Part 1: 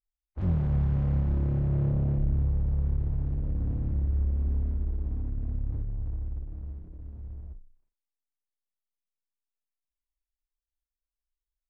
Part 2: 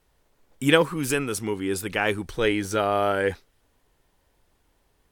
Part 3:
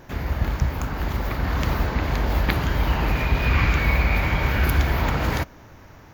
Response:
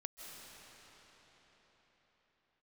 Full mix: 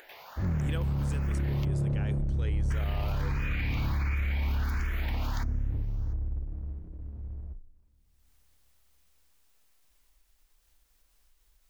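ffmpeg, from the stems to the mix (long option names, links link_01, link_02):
-filter_complex "[0:a]volume=0.5dB,asplit=2[link_01][link_02];[link_02]volume=-19.5dB[link_03];[1:a]lowpass=frequency=7900:width_type=q:width=1.5,volume=-19dB[link_04];[2:a]highpass=860,asplit=2[link_05][link_06];[link_06]afreqshift=1.4[link_07];[link_05][link_07]amix=inputs=2:normalize=1,volume=-8dB,asplit=3[link_08][link_09][link_10];[link_08]atrim=end=1.65,asetpts=PTS-STARTPTS,afade=type=out:start_time=1.646:duration=0.004:curve=hsin[link_11];[link_09]atrim=start=1.65:end=2.7,asetpts=PTS-STARTPTS,volume=0[link_12];[link_10]atrim=start=2.7,asetpts=PTS-STARTPTS,afade=type=in:duration=0.004:curve=hsin[link_13];[link_11][link_12][link_13]concat=n=3:v=0:a=1[link_14];[link_01][link_14]amix=inputs=2:normalize=0,acompressor=mode=upward:threshold=-45dB:ratio=2.5,alimiter=limit=-20.5dB:level=0:latency=1,volume=0dB[link_15];[3:a]atrim=start_sample=2205[link_16];[link_03][link_16]afir=irnorm=-1:irlink=0[link_17];[link_04][link_15][link_17]amix=inputs=3:normalize=0,alimiter=limit=-23dB:level=0:latency=1:release=12"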